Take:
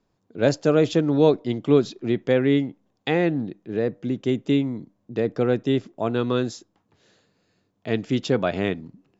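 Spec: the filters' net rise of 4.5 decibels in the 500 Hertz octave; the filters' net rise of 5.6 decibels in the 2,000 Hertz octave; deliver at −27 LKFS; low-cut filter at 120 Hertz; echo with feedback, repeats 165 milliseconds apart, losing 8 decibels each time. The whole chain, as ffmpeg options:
ffmpeg -i in.wav -af "highpass=120,equalizer=frequency=500:width_type=o:gain=5,equalizer=frequency=2000:width_type=o:gain=6.5,aecho=1:1:165|330|495|660|825:0.398|0.159|0.0637|0.0255|0.0102,volume=-7.5dB" out.wav

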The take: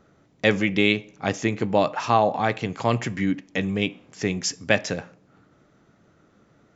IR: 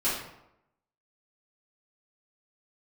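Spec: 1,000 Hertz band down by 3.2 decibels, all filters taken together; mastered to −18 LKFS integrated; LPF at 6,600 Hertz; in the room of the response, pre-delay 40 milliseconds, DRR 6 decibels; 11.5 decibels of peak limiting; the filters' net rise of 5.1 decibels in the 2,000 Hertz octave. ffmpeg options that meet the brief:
-filter_complex "[0:a]lowpass=6600,equalizer=frequency=1000:width_type=o:gain=-6,equalizer=frequency=2000:width_type=o:gain=7.5,alimiter=limit=-12dB:level=0:latency=1,asplit=2[link_01][link_02];[1:a]atrim=start_sample=2205,adelay=40[link_03];[link_02][link_03]afir=irnorm=-1:irlink=0,volume=-16dB[link_04];[link_01][link_04]amix=inputs=2:normalize=0,volume=8dB"

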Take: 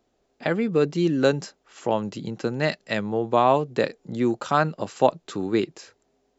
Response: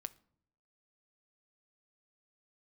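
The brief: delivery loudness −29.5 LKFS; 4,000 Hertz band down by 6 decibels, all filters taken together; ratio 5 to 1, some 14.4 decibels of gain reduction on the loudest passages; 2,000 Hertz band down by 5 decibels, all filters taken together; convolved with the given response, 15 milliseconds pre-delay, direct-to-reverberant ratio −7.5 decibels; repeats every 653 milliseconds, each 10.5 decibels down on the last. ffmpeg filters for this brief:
-filter_complex "[0:a]equalizer=frequency=2000:width_type=o:gain=-5.5,equalizer=frequency=4000:width_type=o:gain=-5.5,acompressor=threshold=-30dB:ratio=5,aecho=1:1:653|1306|1959:0.299|0.0896|0.0269,asplit=2[link_01][link_02];[1:a]atrim=start_sample=2205,adelay=15[link_03];[link_02][link_03]afir=irnorm=-1:irlink=0,volume=11dB[link_04];[link_01][link_04]amix=inputs=2:normalize=0,volume=-2.5dB"

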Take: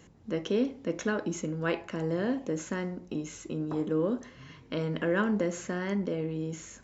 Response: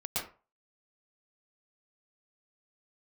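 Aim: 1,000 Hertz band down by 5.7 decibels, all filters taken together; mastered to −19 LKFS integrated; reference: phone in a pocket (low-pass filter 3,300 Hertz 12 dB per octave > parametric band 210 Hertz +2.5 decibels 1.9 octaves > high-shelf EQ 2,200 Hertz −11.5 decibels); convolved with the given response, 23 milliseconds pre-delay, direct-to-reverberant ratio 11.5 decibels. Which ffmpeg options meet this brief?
-filter_complex "[0:a]equalizer=frequency=1000:width_type=o:gain=-5,asplit=2[link_01][link_02];[1:a]atrim=start_sample=2205,adelay=23[link_03];[link_02][link_03]afir=irnorm=-1:irlink=0,volume=-16dB[link_04];[link_01][link_04]amix=inputs=2:normalize=0,lowpass=3300,equalizer=frequency=210:width_type=o:width=1.9:gain=2.5,highshelf=frequency=2200:gain=-11.5,volume=12dB"

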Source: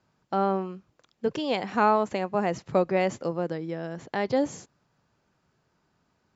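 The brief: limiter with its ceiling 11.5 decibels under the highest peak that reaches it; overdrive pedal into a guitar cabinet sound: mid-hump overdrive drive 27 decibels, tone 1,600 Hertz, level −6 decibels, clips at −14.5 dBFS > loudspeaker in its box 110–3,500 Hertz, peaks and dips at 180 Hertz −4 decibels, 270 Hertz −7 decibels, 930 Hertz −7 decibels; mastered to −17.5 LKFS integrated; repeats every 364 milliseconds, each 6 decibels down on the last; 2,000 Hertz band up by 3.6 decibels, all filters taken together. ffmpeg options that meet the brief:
ffmpeg -i in.wav -filter_complex "[0:a]equalizer=frequency=2000:width_type=o:gain=5,alimiter=limit=-19dB:level=0:latency=1,aecho=1:1:364|728|1092|1456|1820|2184:0.501|0.251|0.125|0.0626|0.0313|0.0157,asplit=2[link_01][link_02];[link_02]highpass=frequency=720:poles=1,volume=27dB,asoftclip=type=tanh:threshold=-14.5dB[link_03];[link_01][link_03]amix=inputs=2:normalize=0,lowpass=frequency=1600:poles=1,volume=-6dB,highpass=110,equalizer=frequency=180:width_type=q:width=4:gain=-4,equalizer=frequency=270:width_type=q:width=4:gain=-7,equalizer=frequency=930:width_type=q:width=4:gain=-7,lowpass=frequency=3500:width=0.5412,lowpass=frequency=3500:width=1.3066,volume=8.5dB" out.wav

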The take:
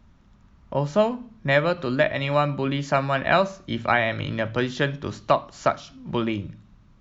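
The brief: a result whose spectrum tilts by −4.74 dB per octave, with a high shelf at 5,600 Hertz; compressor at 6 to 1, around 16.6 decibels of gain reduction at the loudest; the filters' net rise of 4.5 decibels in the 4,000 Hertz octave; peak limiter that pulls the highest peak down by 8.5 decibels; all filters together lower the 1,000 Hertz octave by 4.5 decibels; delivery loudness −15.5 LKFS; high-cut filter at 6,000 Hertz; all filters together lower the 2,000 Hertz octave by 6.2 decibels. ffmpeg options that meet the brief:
ffmpeg -i in.wav -af "lowpass=6000,equalizer=frequency=1000:width_type=o:gain=-4.5,equalizer=frequency=2000:width_type=o:gain=-9,equalizer=frequency=4000:width_type=o:gain=8,highshelf=frequency=5600:gain=5.5,acompressor=threshold=-35dB:ratio=6,volume=25dB,alimiter=limit=-3.5dB:level=0:latency=1" out.wav

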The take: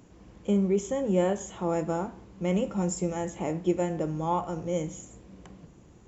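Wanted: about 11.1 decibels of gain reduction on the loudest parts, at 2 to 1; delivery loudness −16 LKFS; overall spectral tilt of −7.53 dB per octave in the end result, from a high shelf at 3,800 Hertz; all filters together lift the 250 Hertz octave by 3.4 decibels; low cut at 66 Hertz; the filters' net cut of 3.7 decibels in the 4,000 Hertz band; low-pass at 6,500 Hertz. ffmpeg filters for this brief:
ffmpeg -i in.wav -af "highpass=66,lowpass=6500,equalizer=frequency=250:width_type=o:gain=5.5,highshelf=frequency=3800:gain=-3.5,equalizer=frequency=4000:width_type=o:gain=-3,acompressor=threshold=-38dB:ratio=2,volume=20dB" out.wav

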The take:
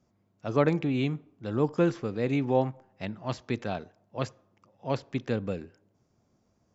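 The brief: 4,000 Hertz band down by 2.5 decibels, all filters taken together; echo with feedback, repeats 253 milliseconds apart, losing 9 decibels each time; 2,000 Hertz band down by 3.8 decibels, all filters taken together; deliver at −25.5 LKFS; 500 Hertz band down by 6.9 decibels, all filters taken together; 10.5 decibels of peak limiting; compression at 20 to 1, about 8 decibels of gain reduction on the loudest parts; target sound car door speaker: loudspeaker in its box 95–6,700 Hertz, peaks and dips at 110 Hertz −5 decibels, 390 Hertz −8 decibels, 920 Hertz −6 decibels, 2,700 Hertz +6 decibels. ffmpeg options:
ffmpeg -i in.wav -af "equalizer=frequency=500:width_type=o:gain=-4.5,equalizer=frequency=2000:width_type=o:gain=-7,equalizer=frequency=4000:width_type=o:gain=-3,acompressor=threshold=-28dB:ratio=20,alimiter=level_in=5dB:limit=-24dB:level=0:latency=1,volume=-5dB,highpass=95,equalizer=frequency=110:width_type=q:width=4:gain=-5,equalizer=frequency=390:width_type=q:width=4:gain=-8,equalizer=frequency=920:width_type=q:width=4:gain=-6,equalizer=frequency=2700:width_type=q:width=4:gain=6,lowpass=frequency=6700:width=0.5412,lowpass=frequency=6700:width=1.3066,aecho=1:1:253|506|759|1012:0.355|0.124|0.0435|0.0152,volume=17dB" out.wav

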